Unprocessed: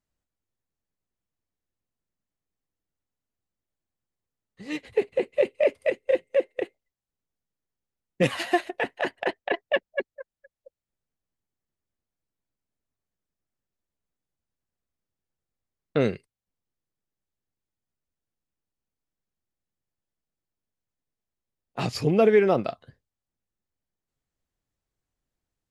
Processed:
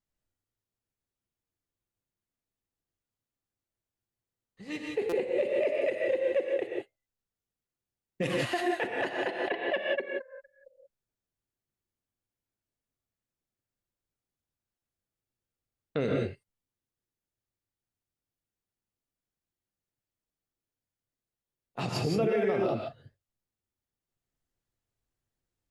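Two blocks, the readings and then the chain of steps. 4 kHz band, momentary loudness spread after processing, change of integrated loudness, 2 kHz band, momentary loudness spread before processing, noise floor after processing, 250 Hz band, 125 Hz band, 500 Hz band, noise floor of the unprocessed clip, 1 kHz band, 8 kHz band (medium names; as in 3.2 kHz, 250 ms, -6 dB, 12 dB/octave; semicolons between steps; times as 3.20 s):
-3.0 dB, 11 LU, -5.0 dB, -3.5 dB, 15 LU, under -85 dBFS, -4.5 dB, -4.0 dB, -4.5 dB, under -85 dBFS, -4.5 dB, -3.0 dB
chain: gated-style reverb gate 200 ms rising, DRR 0 dB; peak limiter -14.5 dBFS, peak gain reduction 9 dB; buffer glitch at 5.09/14.78 s, samples 256, times 5; trim -5 dB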